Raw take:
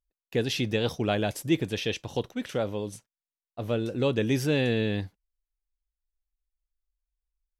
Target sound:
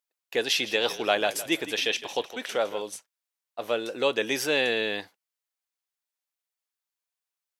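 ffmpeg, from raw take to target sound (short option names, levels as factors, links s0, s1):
-filter_complex "[0:a]highpass=600,asettb=1/sr,asplit=3[s0][s1][s2];[s0]atrim=end=0.454[s3];[s1]atrim=start=0.45:end=2.82,asetpts=PTS-STARTPTS,afade=t=in:d=0.004:c=qsin,afade=t=out:st=2.366:d=0.004:c=qsin,asplit=4[s4][s5][s6][s7];[s5]adelay=160,afreqshift=-33,volume=0.188[s8];[s6]adelay=320,afreqshift=-66,volume=0.0603[s9];[s7]adelay=480,afreqshift=-99,volume=0.0193[s10];[s4][s8][s9][s10]amix=inputs=4:normalize=0,atrim=end_sample=104517[s11];[s2]atrim=start=2.816[s12];[s3][s11]acrossfade=d=0.004:c1=hsin:c2=qsin[s13];[s13][s12]acrossfade=d=0.004:c1=qsin:c2=hsin,volume=2.11"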